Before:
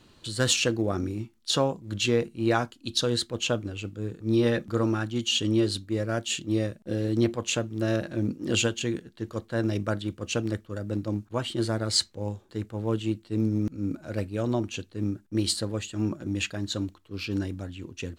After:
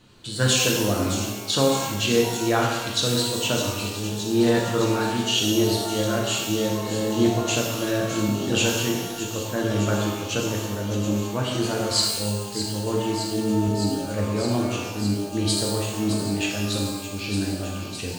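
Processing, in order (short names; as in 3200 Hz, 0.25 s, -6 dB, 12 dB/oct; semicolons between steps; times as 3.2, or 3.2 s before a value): on a send: thin delay 0.613 s, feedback 84%, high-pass 3900 Hz, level -8 dB; on the sum: shimmer reverb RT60 1.1 s, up +12 st, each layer -8 dB, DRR -2 dB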